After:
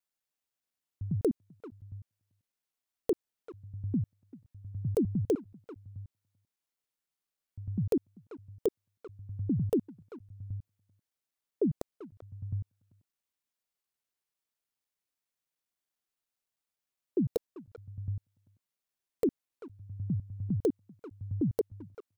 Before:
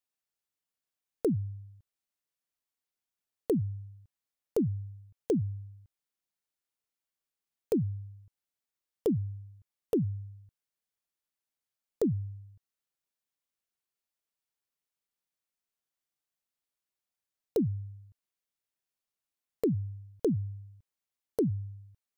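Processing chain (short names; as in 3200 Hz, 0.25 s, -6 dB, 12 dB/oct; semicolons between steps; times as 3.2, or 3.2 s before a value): slices in reverse order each 0.101 s, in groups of 5; speakerphone echo 0.39 s, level -14 dB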